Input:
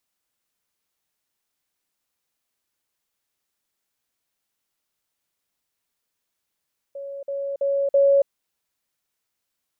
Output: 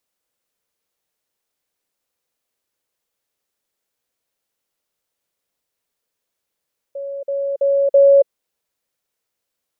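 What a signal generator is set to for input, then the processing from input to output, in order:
level ladder 557 Hz -31 dBFS, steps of 6 dB, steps 4, 0.28 s 0.05 s
bell 500 Hz +7.5 dB 0.73 oct

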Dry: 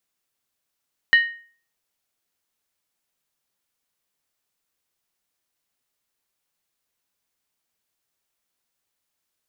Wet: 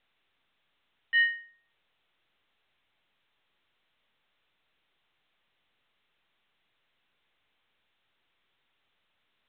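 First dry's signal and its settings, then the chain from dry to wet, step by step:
skin hit, lowest mode 1860 Hz, decay 0.44 s, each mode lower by 10.5 dB, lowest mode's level -8.5 dB
tilt shelf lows -5 dB, about 1200 Hz; auto swell 0.105 s; µ-law 64 kbps 8000 Hz

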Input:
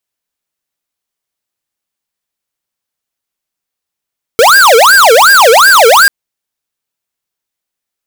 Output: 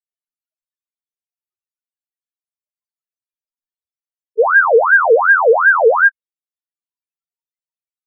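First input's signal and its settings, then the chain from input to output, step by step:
siren wail 443–1620 Hz 2.7/s square -4 dBFS 1.69 s
loudest bins only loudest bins 2

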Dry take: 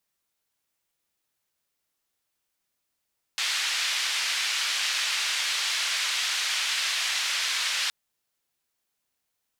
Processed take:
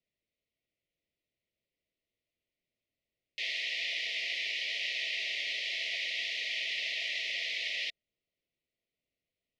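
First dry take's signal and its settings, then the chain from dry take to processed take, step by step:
noise band 1800–4300 Hz, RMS -27.5 dBFS 4.52 s
Chebyshev band-stop 680–1900 Hz, order 5; air absorption 290 m

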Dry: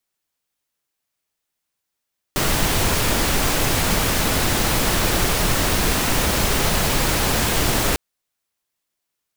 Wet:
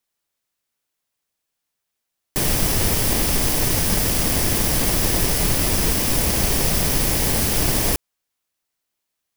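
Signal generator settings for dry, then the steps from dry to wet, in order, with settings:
noise pink, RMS -19 dBFS 5.60 s
FFT order left unsorted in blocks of 32 samples

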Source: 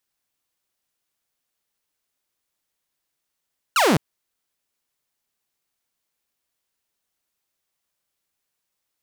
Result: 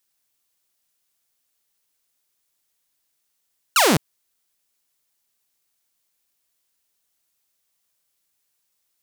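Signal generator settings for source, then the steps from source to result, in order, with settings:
laser zap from 1500 Hz, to 130 Hz, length 0.21 s saw, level -12 dB
high shelf 3600 Hz +8 dB

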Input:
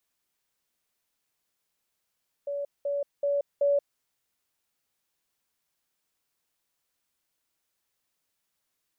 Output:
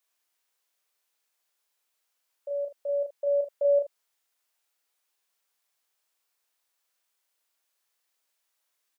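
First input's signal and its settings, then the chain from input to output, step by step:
level ladder 569 Hz -29 dBFS, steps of 3 dB, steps 4, 0.18 s 0.20 s
HPF 490 Hz 12 dB/oct; early reflections 35 ms -4 dB, 77 ms -12 dB

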